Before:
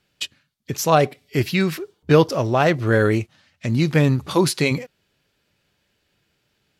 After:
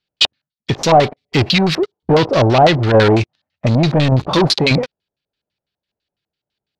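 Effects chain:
high-shelf EQ 4,900 Hz +7.5 dB
leveller curve on the samples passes 5
shaped tremolo saw down 1.7 Hz, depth 35%
auto-filter low-pass square 6 Hz 750–4,100 Hz
level −5.5 dB

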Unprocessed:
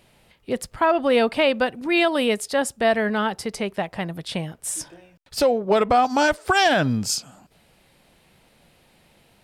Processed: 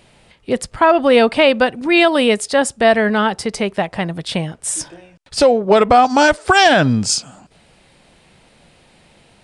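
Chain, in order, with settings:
downsampling to 22,050 Hz
level +7 dB

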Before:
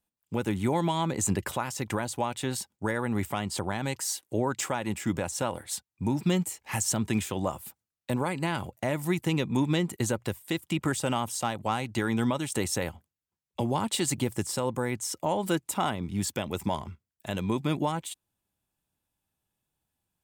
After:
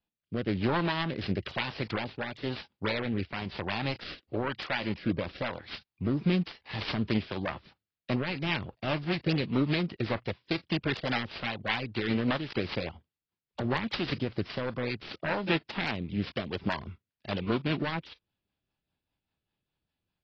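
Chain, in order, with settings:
phase distortion by the signal itself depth 0.39 ms
downsampling to 11,025 Hz
rotating-speaker cabinet horn 1 Hz, later 5 Hz, at 0:06.23
parametric band 2,800 Hz +3.5 dB 0.93 octaves
AAC 24 kbit/s 22,050 Hz

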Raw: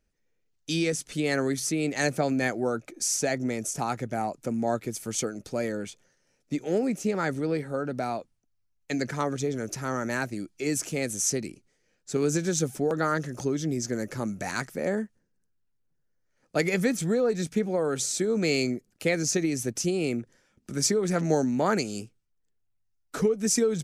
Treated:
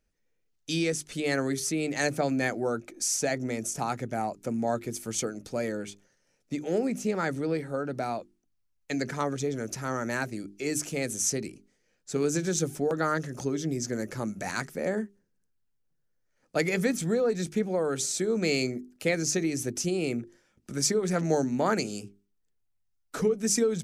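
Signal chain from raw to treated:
mains-hum notches 50/100/150/200/250/300/350/400 Hz
level −1 dB

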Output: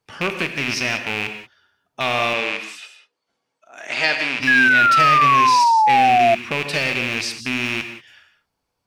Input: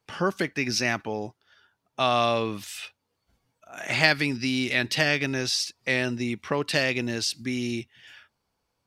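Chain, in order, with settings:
loose part that buzzes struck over −34 dBFS, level −11 dBFS
0:02.33–0:04.40: band-pass filter 310–7,600 Hz
reverb whose tail is shaped and stops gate 210 ms flat, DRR 6.5 dB
0:04.47–0:06.35: sound drawn into the spectrogram fall 670–1,700 Hz −14 dBFS

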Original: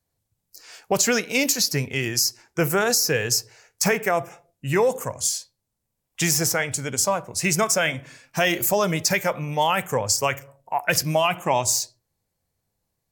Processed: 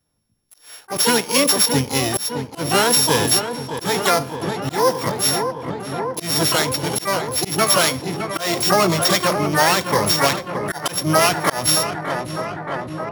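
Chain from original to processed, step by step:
samples sorted by size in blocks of 8 samples
feedback echo with a low-pass in the loop 614 ms, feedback 83%, low-pass 1,700 Hz, level −8.5 dB
pitch-shifted copies added −7 semitones −14 dB, +12 semitones −2 dB
volume swells 190 ms
level +3 dB

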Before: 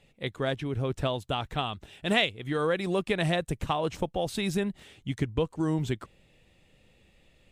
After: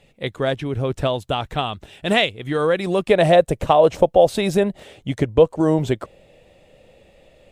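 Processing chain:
parametric band 580 Hz +3.5 dB 0.99 octaves, from 0:03.09 +14 dB
level +6 dB

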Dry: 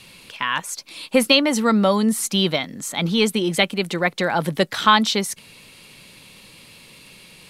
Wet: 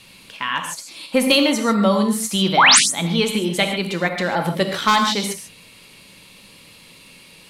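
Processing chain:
wavefolder on the positive side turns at −7 dBFS
sound drawn into the spectrogram rise, 0:02.57–0:02.79, 670–11,000 Hz −10 dBFS
reverb whose tail is shaped and stops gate 170 ms flat, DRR 4 dB
level −1.5 dB

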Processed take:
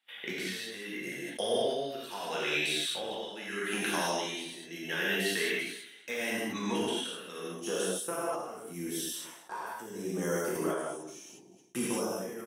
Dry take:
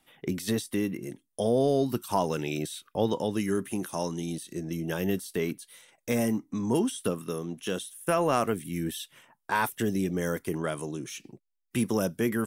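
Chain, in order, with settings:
meter weighting curve A
noise gate −59 dBFS, range −17 dB
flat-topped bell 2,500 Hz +8.5 dB, from 0:07.38 −9 dB
downward compressor 5 to 1, threshold −32 dBFS, peak gain reduction 10 dB
amplitude tremolo 0.77 Hz, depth 81%
repeating echo 216 ms, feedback 27%, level −20 dB
reverb whose tail is shaped and stops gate 230 ms flat, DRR −6.5 dB
level that may fall only so fast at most 62 dB per second

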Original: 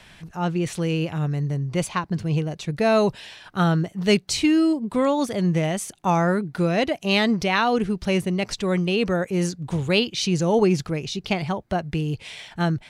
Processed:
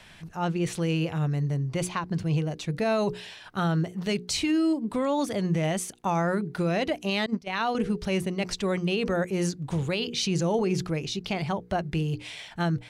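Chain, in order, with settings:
mains-hum notches 60/120/180/240/300/360/420/480 Hz
0:07.26–0:07.75: noise gate −20 dBFS, range −23 dB
brickwall limiter −15.5 dBFS, peak gain reduction 9.5 dB
level −2 dB

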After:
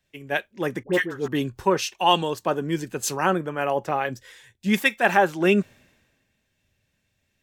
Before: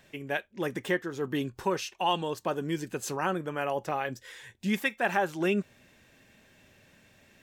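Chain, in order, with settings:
0:00.83–0:01.28: all-pass dispersion highs, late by 85 ms, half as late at 1,100 Hz
multiband upward and downward expander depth 70%
level +6.5 dB

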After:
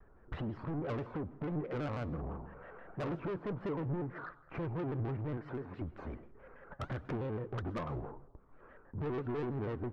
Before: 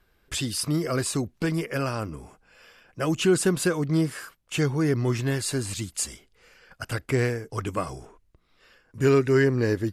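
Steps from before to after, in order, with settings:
low-pass filter 1,300 Hz 24 dB per octave
0:02.14–0:03.15: flutter between parallel walls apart 7.6 metres, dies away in 0.69 s
in parallel at −6 dB: hard clipping −20 dBFS, distortion −12 dB
on the sum: downward compressor 8 to 1, threshold −30 dBFS, peak gain reduction 16 dB
0:05.37–0:05.82: high-pass filter 490 Hz 6 dB per octave
soft clipping −35.5 dBFS, distortion −9 dB
flanger 1.7 Hz, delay 1.9 ms, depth 6.4 ms, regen +81%
on a send at −17.5 dB: convolution reverb RT60 0.85 s, pre-delay 87 ms
on the sum: pitch modulation by a square or saw wave square 6.1 Hz, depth 160 cents
level +6 dB

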